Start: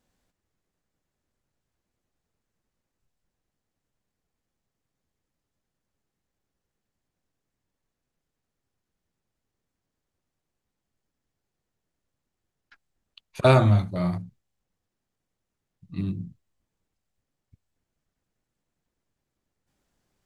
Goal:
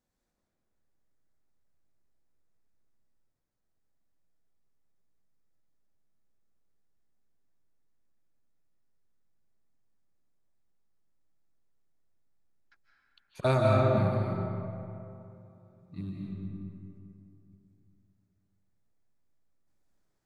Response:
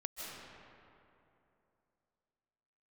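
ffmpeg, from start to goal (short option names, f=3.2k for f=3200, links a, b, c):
-filter_complex "[0:a]equalizer=f=2.9k:t=o:w=0.37:g=-6.5[a];[1:a]atrim=start_sample=2205[b];[a][b]afir=irnorm=-1:irlink=0,volume=-5dB"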